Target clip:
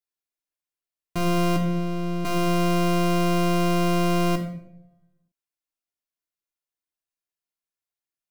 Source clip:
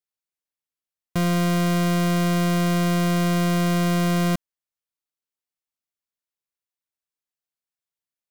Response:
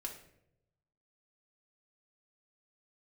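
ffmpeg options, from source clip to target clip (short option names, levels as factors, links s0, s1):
-filter_complex "[0:a]asettb=1/sr,asplit=3[s0][s1][s2];[s0]atrim=end=1.564[s3];[s1]atrim=start=1.56:end=2.25,asetpts=PTS-STARTPTS,afade=t=in:d=0.004:c=qsin,afade=t=out:st=0.686:d=0.004:c=qsin,acrossover=split=380|6000[s4][s5][s6];[s4]acompressor=threshold=0.0562:ratio=4[s7];[s5]acompressor=threshold=0.0141:ratio=4[s8];[s6]acompressor=threshold=0.002:ratio=4[s9];[s7][s8][s9]amix=inputs=3:normalize=0[s10];[s2]atrim=start=2.246[s11];[s3][s10]acrossfade=d=0.004:c1=hsin:c2=qsin[s12];[s12][s11]acrossfade=d=0.004:c1=qsin:c2=hsin[s13];[1:a]atrim=start_sample=2205[s14];[s13][s14]afir=irnorm=-1:irlink=0"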